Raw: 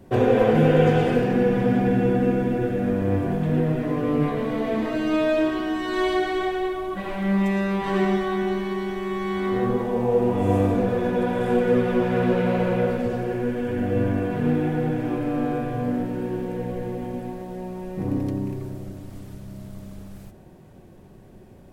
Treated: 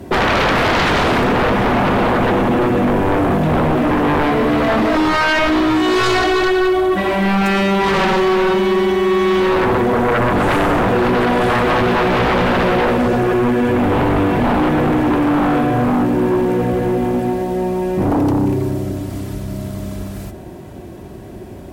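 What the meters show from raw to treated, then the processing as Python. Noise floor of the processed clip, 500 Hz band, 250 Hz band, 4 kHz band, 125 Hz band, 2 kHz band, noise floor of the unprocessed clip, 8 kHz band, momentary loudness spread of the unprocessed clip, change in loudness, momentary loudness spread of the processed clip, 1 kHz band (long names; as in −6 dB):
−33 dBFS, +7.0 dB, +7.0 dB, +15.0 dB, +5.0 dB, +13.5 dB, −47 dBFS, can't be measured, 13 LU, +8.0 dB, 12 LU, +13.0 dB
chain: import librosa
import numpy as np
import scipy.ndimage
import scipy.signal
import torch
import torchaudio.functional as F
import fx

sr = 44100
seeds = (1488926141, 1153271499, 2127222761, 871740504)

y = scipy.signal.sosfilt(scipy.signal.butter(4, 43.0, 'highpass', fs=sr, output='sos'), x)
y = y + 0.35 * np.pad(y, (int(3.0 * sr / 1000.0), 0))[:len(y)]
y = fx.fold_sine(y, sr, drive_db=17, ceiling_db=-5.5)
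y = y * librosa.db_to_amplitude(-6.0)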